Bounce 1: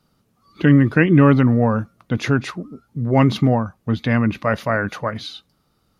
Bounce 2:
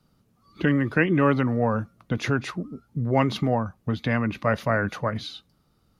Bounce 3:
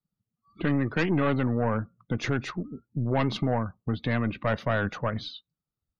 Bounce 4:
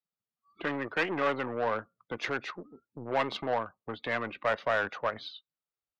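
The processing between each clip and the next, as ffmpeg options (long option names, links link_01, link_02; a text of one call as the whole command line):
ffmpeg -i in.wav -filter_complex "[0:a]lowshelf=frequency=290:gain=5.5,acrossover=split=390|2800[link_01][link_02][link_03];[link_01]acompressor=threshold=-20dB:ratio=6[link_04];[link_04][link_02][link_03]amix=inputs=3:normalize=0,volume=-4dB" out.wav
ffmpeg -i in.wav -af "aeval=exprs='(tanh(8.91*val(0)+0.45)-tanh(0.45))/8.91':channel_layout=same,afftdn=noise_reduction=26:noise_floor=-47" out.wav
ffmpeg -i in.wav -filter_complex "[0:a]aeval=exprs='0.168*(cos(1*acos(clip(val(0)/0.168,-1,1)))-cos(1*PI/2))+0.00841*(cos(7*acos(clip(val(0)/0.168,-1,1)))-cos(7*PI/2))':channel_layout=same,acrossover=split=390 5000:gain=0.1 1 0.224[link_01][link_02][link_03];[link_01][link_02][link_03]amix=inputs=3:normalize=0,volume=1dB" out.wav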